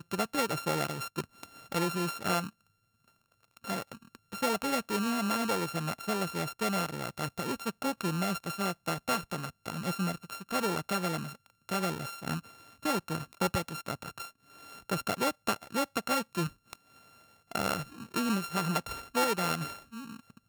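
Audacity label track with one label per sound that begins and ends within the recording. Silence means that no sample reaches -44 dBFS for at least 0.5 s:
3.570000	16.750000	sound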